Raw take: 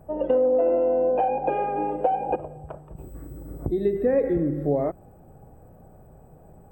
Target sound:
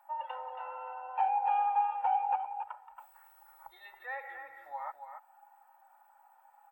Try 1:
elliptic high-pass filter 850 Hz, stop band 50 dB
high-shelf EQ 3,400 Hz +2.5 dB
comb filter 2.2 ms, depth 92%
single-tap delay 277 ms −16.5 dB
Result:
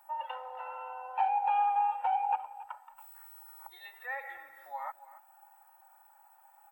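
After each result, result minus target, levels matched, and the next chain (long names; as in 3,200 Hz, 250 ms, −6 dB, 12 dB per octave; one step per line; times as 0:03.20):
echo-to-direct −8.5 dB; 4,000 Hz band +3.5 dB
elliptic high-pass filter 850 Hz, stop band 50 dB
high-shelf EQ 3,400 Hz +2.5 dB
comb filter 2.2 ms, depth 92%
single-tap delay 277 ms −8 dB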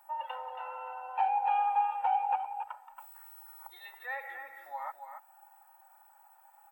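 4,000 Hz band +4.5 dB
elliptic high-pass filter 850 Hz, stop band 50 dB
high-shelf EQ 3,400 Hz −8.5 dB
comb filter 2.2 ms, depth 92%
single-tap delay 277 ms −8 dB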